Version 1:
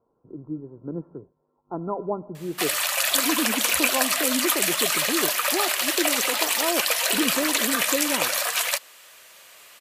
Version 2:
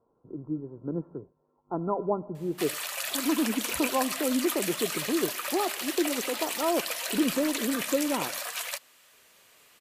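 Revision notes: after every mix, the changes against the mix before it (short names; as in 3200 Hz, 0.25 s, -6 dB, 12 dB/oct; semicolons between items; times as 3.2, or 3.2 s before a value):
background -10.0 dB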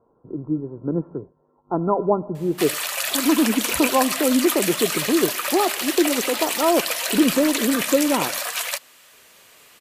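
speech +8.5 dB; background +8.0 dB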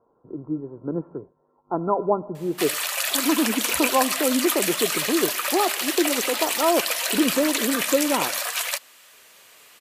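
master: add low shelf 310 Hz -7.5 dB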